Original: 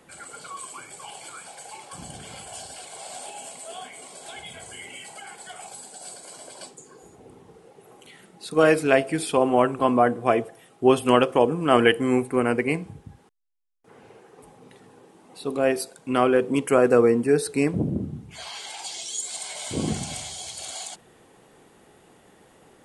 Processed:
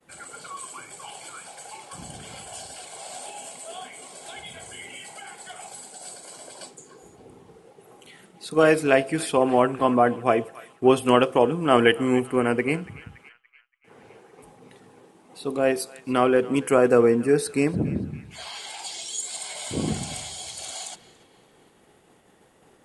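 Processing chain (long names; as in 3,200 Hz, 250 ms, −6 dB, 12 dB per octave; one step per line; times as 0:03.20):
0:18.35–0:20.50: notch filter 6,000 Hz, Q 11
feedback echo with a band-pass in the loop 283 ms, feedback 66%, band-pass 2,200 Hz, level −17.5 dB
downward expander −50 dBFS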